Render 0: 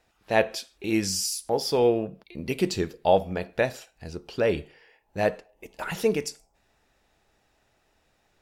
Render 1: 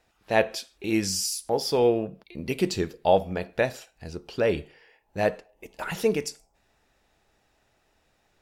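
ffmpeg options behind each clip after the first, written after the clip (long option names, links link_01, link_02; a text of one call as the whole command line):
ffmpeg -i in.wav -af anull out.wav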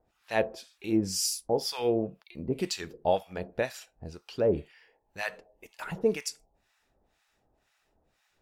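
ffmpeg -i in.wav -filter_complex "[0:a]acrossover=split=940[link_01][link_02];[link_01]aeval=exprs='val(0)*(1-1/2+1/2*cos(2*PI*2*n/s))':channel_layout=same[link_03];[link_02]aeval=exprs='val(0)*(1-1/2-1/2*cos(2*PI*2*n/s))':channel_layout=same[link_04];[link_03][link_04]amix=inputs=2:normalize=0" out.wav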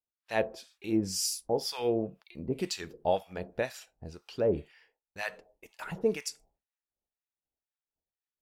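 ffmpeg -i in.wav -af "agate=range=-33dB:threshold=-55dB:ratio=3:detection=peak,volume=-2dB" out.wav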